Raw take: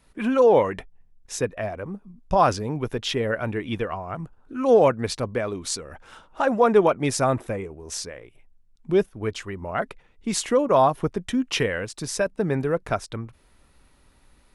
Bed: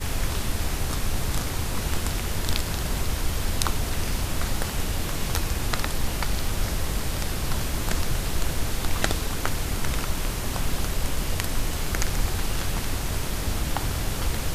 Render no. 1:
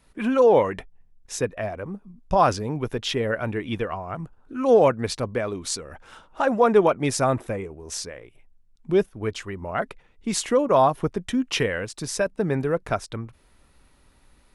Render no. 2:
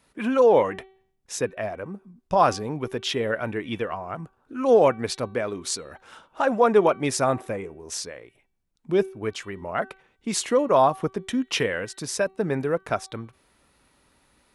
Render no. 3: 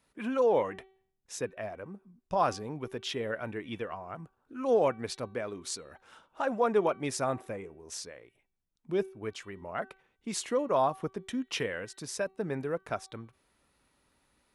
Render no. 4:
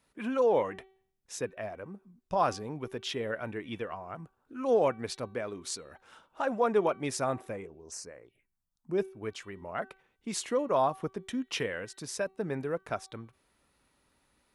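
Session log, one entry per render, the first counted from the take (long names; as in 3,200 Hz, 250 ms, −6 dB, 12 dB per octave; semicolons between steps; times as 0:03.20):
no processing that can be heard
high-pass filter 170 Hz 6 dB per octave; hum removal 382.3 Hz, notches 11
level −8.5 dB
0:07.66–0:08.98: phaser swept by the level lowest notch 370 Hz, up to 3,500 Hz, full sweep at −44 dBFS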